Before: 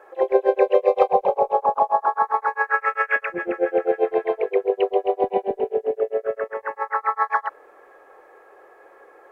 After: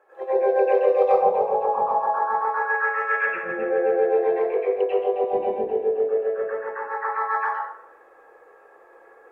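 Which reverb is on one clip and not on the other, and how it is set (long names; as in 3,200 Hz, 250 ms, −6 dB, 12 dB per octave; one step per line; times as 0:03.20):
dense smooth reverb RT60 0.76 s, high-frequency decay 0.55×, pre-delay 80 ms, DRR −10 dB
level −12.5 dB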